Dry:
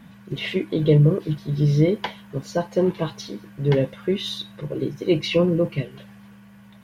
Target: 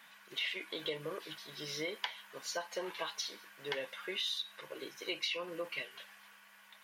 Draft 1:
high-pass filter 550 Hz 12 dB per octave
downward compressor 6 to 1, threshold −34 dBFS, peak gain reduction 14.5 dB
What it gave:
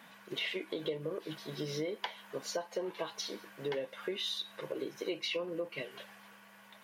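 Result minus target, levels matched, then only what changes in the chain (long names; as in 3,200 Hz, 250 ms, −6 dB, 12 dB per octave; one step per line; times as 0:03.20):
500 Hz band +4.0 dB
change: high-pass filter 1,200 Hz 12 dB per octave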